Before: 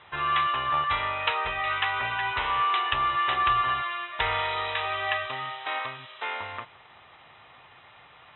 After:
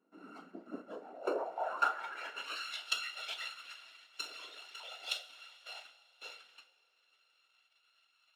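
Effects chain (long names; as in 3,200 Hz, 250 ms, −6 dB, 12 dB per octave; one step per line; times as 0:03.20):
samples sorted by size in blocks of 32 samples
reverb reduction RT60 1 s
0:03.46–0:04.80: downward compressor 4 to 1, threshold −28 dBFS, peak gain reduction 6.5 dB
noise reduction from a noise print of the clip's start 16 dB
band-pass filter sweep 260 Hz → 3,300 Hz, 0:00.83–0:02.56
random phases in short frames
linear-phase brick-wall high-pass 170 Hz
coupled-rooms reverb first 0.31 s, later 3.2 s, from −19 dB, DRR 5.5 dB
level +7 dB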